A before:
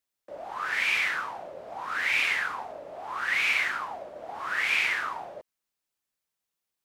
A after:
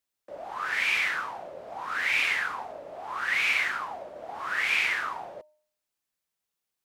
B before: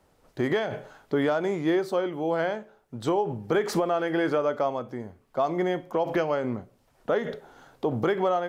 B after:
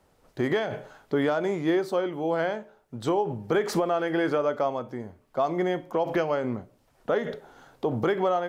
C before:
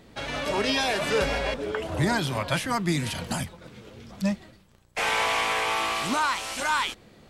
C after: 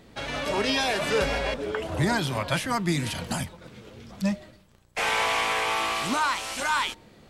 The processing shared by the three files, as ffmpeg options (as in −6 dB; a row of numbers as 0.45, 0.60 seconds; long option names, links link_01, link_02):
-af "bandreject=frequency=304.6:width_type=h:width=4,bandreject=frequency=609.2:width_type=h:width=4,bandreject=frequency=913.8:width_type=h:width=4"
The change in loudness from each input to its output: 0.0, 0.0, 0.0 LU